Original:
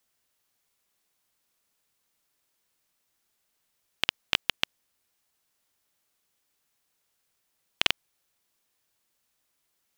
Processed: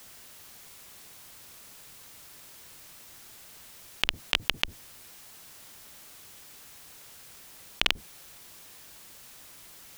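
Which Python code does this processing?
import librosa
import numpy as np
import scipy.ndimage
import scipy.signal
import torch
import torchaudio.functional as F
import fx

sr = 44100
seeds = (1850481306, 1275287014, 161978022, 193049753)

y = fx.octave_divider(x, sr, octaves=1, level_db=0.0)
y = fx.env_flatten(y, sr, amount_pct=50)
y = y * 10.0 ** (-1.0 / 20.0)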